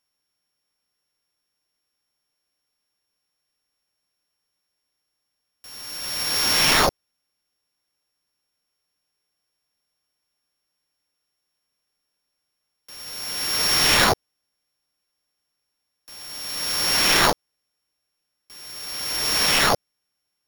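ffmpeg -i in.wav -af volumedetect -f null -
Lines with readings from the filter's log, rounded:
mean_volume: -27.9 dB
max_volume: -4.6 dB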